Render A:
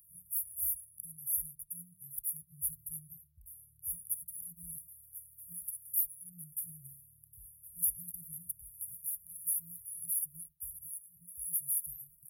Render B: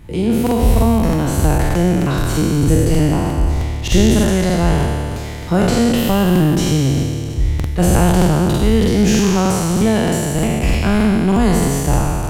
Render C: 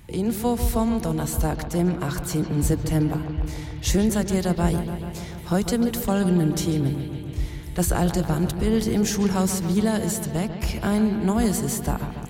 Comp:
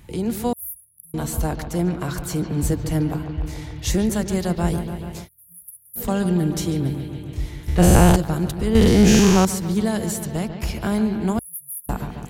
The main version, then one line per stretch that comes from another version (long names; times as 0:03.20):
C
0:00.53–0:01.14: punch in from A
0:05.24–0:06.00: punch in from A, crossfade 0.10 s
0:07.68–0:08.16: punch in from B
0:08.75–0:09.45: punch in from B
0:11.39–0:11.89: punch in from A